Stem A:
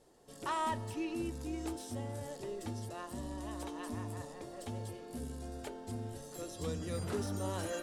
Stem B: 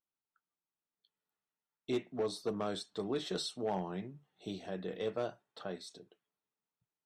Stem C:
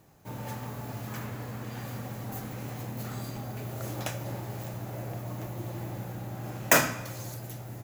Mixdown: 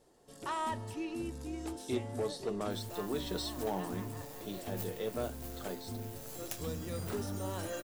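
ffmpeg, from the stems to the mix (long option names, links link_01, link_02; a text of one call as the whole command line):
ffmpeg -i stem1.wav -i stem2.wav -i stem3.wav -filter_complex "[0:a]volume=-1dB[link_01];[1:a]volume=-1dB[link_02];[2:a]crystalizer=i=4:c=0,acrusher=bits=4:dc=4:mix=0:aa=0.000001,adelay=2450,volume=-15.5dB[link_03];[link_01][link_02][link_03]amix=inputs=3:normalize=0" out.wav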